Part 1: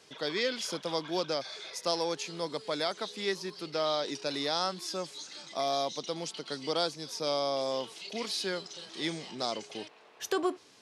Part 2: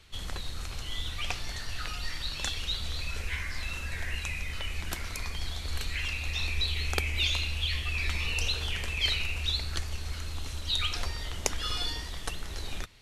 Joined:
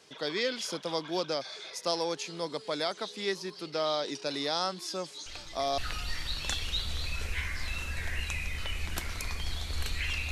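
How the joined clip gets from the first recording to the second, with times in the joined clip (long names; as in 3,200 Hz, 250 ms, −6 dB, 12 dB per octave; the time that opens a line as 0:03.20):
part 1
0:05.26: mix in part 2 from 0:01.21 0.52 s −14 dB
0:05.78: continue with part 2 from 0:01.73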